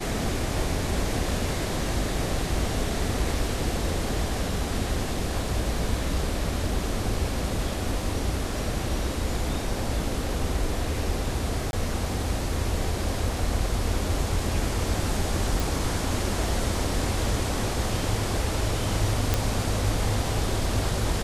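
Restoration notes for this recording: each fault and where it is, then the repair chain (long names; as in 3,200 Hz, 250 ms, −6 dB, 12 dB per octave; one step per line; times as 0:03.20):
0:11.71–0:11.73: drop-out 21 ms
0:15.60: click
0:19.34: click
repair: click removal
repair the gap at 0:11.71, 21 ms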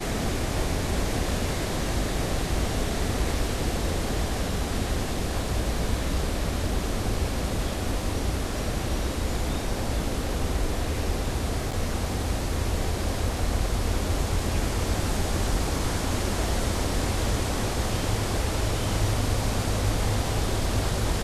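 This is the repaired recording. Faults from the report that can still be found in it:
none of them is left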